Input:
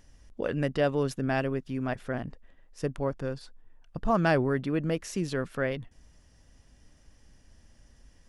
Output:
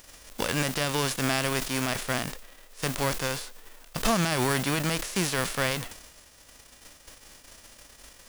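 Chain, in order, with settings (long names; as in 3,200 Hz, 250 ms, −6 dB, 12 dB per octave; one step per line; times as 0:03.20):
spectral envelope flattened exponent 0.3
brickwall limiter −15.5 dBFS, peak gain reduction 9.5 dB
level that may fall only so fast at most 74 dB per second
level +3 dB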